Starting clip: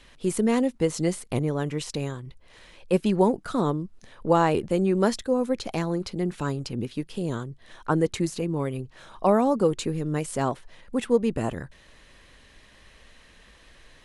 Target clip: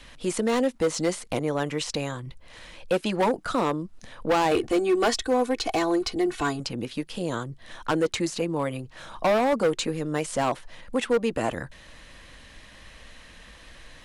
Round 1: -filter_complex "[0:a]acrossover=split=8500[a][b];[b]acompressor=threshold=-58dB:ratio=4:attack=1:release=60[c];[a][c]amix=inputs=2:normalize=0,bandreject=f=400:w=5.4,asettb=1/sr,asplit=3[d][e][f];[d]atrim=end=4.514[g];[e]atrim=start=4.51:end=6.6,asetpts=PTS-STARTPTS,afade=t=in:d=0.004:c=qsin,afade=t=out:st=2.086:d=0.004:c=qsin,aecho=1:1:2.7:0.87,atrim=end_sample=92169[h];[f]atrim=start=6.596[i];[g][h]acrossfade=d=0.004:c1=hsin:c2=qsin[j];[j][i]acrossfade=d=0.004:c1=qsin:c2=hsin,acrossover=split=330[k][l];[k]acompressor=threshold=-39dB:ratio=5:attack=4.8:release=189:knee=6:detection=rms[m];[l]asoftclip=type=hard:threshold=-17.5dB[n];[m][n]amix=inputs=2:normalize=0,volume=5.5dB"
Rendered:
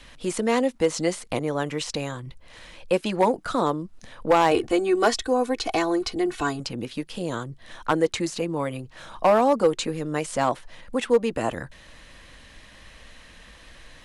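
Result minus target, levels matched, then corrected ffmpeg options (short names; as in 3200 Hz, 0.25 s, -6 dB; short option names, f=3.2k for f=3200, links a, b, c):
hard clip: distortion -8 dB
-filter_complex "[0:a]acrossover=split=8500[a][b];[b]acompressor=threshold=-58dB:ratio=4:attack=1:release=60[c];[a][c]amix=inputs=2:normalize=0,bandreject=f=400:w=5.4,asettb=1/sr,asplit=3[d][e][f];[d]atrim=end=4.514[g];[e]atrim=start=4.51:end=6.6,asetpts=PTS-STARTPTS,afade=t=in:d=0.004:c=qsin,afade=t=out:st=2.086:d=0.004:c=qsin,aecho=1:1:2.7:0.87,atrim=end_sample=92169[h];[f]atrim=start=6.596[i];[g][h]acrossfade=d=0.004:c1=hsin:c2=qsin[j];[j][i]acrossfade=d=0.004:c1=qsin:c2=hsin,acrossover=split=330[k][l];[k]acompressor=threshold=-39dB:ratio=5:attack=4.8:release=189:knee=6:detection=rms[m];[l]asoftclip=type=hard:threshold=-24dB[n];[m][n]amix=inputs=2:normalize=0,volume=5.5dB"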